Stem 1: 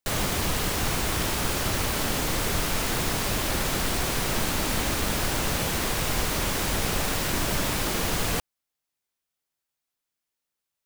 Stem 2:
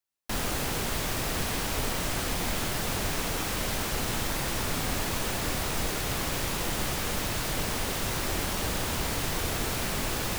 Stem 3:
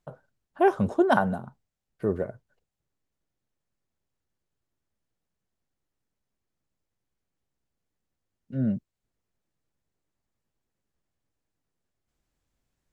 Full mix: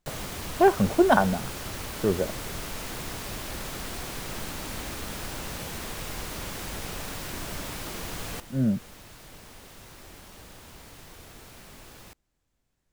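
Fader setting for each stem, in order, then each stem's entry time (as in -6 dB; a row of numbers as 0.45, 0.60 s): -9.5, -17.5, +2.0 dB; 0.00, 1.75, 0.00 s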